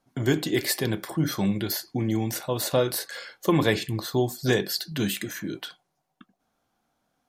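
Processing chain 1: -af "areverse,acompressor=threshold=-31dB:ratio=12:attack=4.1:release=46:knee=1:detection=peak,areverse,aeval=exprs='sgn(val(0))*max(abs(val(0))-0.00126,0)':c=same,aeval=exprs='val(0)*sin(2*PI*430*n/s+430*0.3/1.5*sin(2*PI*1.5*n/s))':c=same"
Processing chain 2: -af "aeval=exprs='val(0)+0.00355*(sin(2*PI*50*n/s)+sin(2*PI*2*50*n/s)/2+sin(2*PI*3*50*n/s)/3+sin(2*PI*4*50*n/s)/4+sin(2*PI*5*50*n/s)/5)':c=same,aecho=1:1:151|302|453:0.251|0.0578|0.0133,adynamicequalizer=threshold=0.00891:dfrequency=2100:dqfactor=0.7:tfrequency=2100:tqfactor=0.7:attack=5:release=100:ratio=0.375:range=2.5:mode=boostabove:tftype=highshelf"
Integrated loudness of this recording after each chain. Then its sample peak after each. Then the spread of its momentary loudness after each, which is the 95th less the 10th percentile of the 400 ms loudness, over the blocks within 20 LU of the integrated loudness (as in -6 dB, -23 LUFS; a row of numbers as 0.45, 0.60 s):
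-38.0, -25.0 LUFS; -19.0, -6.5 dBFS; 4, 8 LU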